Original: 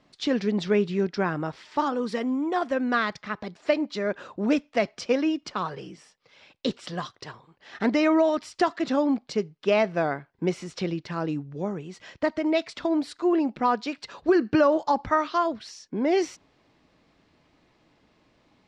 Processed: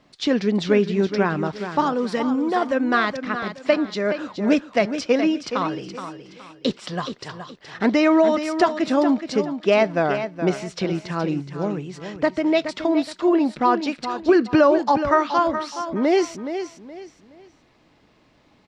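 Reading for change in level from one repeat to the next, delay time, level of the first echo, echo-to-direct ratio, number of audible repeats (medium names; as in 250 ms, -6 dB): -10.5 dB, 421 ms, -9.5 dB, -9.0 dB, 3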